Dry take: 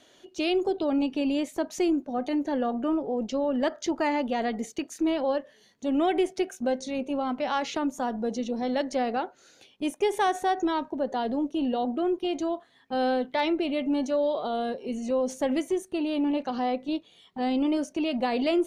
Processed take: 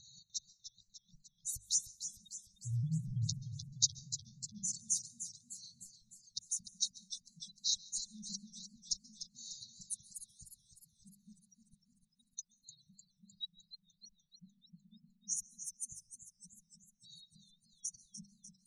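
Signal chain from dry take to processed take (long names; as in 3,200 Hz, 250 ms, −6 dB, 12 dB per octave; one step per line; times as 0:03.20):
0:02.65–0:03.34: sub-harmonics by changed cycles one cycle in 2, muted
gate on every frequency bin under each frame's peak −15 dB strong
mains-hum notches 50/100/150/200/250/300 Hz
downward compressor, threshold −28 dBFS, peak gain reduction 8 dB
linear-phase brick-wall band-stop 180–3,700 Hz
dense smooth reverb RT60 0.92 s, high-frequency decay 0.3×, pre-delay 120 ms, DRR 18 dB
feedback echo with a swinging delay time 301 ms, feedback 60%, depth 116 cents, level −10.5 dB
level +10.5 dB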